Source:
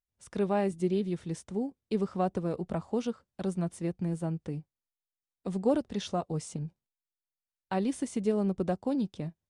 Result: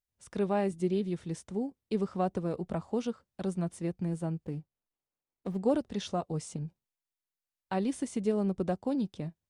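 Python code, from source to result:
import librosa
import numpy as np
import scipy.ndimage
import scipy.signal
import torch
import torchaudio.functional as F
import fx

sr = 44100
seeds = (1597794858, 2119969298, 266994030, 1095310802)

y = fx.median_filter(x, sr, points=25, at=(4.44, 5.6))
y = y * 10.0 ** (-1.0 / 20.0)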